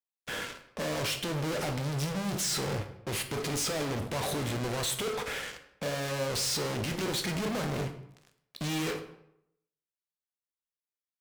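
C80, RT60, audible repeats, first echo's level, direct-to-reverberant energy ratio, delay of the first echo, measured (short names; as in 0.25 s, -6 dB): 13.5 dB, 0.75 s, none, none, 6.5 dB, none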